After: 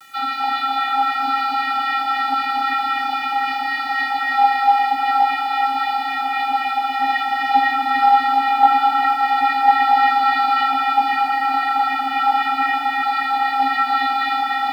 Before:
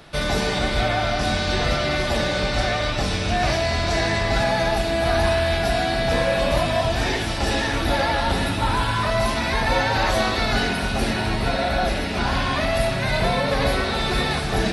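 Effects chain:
Butterworth low-pass 4,500 Hz 48 dB per octave
in parallel at −1.5 dB: brickwall limiter −16.5 dBFS, peak gain reduction 8.5 dB
on the sum: auto-filter high-pass sine 3.8 Hz 800–1,900 Hz
channel vocoder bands 32, square 269 Hz
bit-depth reduction 8 bits, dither none
delay that swaps between a low-pass and a high-pass 396 ms, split 1,400 Hz, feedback 74%, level −8 dB
on a send at −1 dB: convolution reverb RT60 5.0 s, pre-delay 73 ms
on the sum: level −1 dB

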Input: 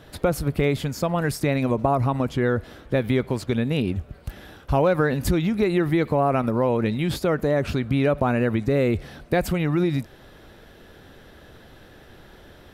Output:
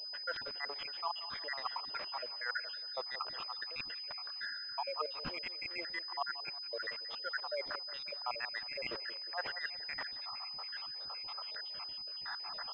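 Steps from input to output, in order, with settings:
time-frequency cells dropped at random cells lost 79%
in parallel at −11 dB: bit-depth reduction 6 bits, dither none
on the sum: high-pass filter 920 Hz 24 dB per octave
reversed playback
downward compressor 8 to 1, threshold −51 dBFS, peak gain reduction 24 dB
reversed playback
gate on every frequency bin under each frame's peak −25 dB strong
feedback echo with a low-pass in the loop 179 ms, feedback 52%, low-pass 1,700 Hz, level −12.5 dB
switching amplifier with a slow clock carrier 5,000 Hz
level +14.5 dB

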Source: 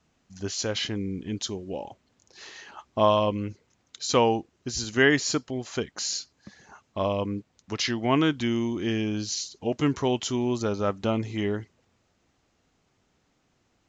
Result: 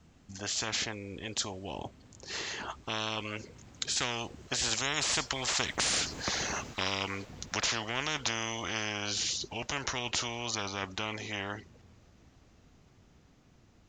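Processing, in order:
source passing by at 0:06.24, 11 m/s, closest 5.1 metres
low-shelf EQ 230 Hz +10.5 dB
every bin compressed towards the loudest bin 10 to 1
level +3.5 dB

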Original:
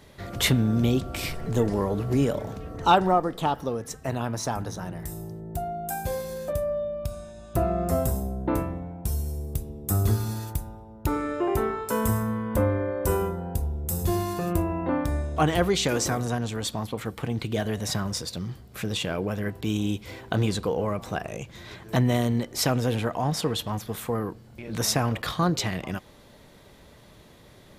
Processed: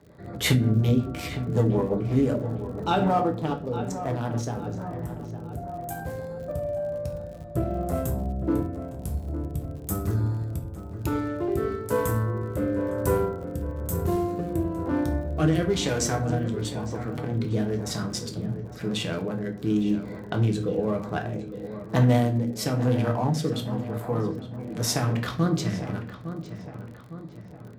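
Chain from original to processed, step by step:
adaptive Wiener filter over 15 samples
high-pass filter 68 Hz
mains-hum notches 50/100 Hz
rectangular room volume 35 cubic metres, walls mixed, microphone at 0.4 metres
rotating-speaker cabinet horn 5.5 Hz, later 1 Hz, at 0:02.31
on a send: feedback echo with a low-pass in the loop 858 ms, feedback 54%, low-pass 2,300 Hz, level −11 dB
on the sum: surface crackle 58 per second −41 dBFS

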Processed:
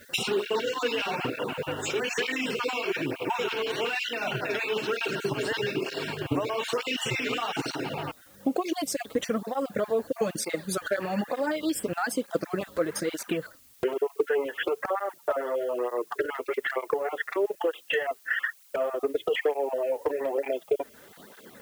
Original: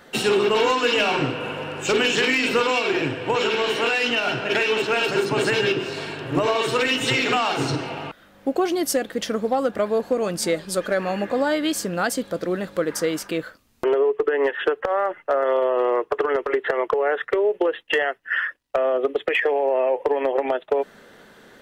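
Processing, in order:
time-frequency cells dropped at random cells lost 23%
brickwall limiter −20.5 dBFS, peak gain reduction 10 dB
transient designer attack +6 dB, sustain −4 dB
background noise blue −55 dBFS
through-zero flanger with one copy inverted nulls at 1.1 Hz, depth 6.1 ms
level +1.5 dB

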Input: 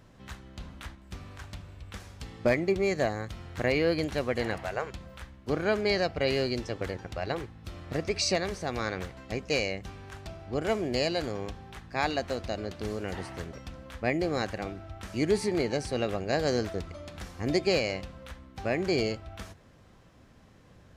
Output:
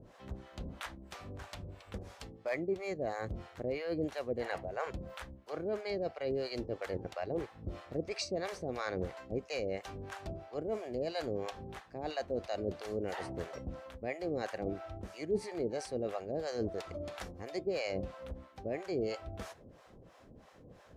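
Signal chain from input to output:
parametric band 530 Hz +8.5 dB 1.8 octaves
reversed playback
downward compressor 6 to 1, threshold −29 dBFS, peak gain reduction 15.5 dB
reversed playback
two-band tremolo in antiphase 3 Hz, depth 100%, crossover 580 Hz
level +1 dB

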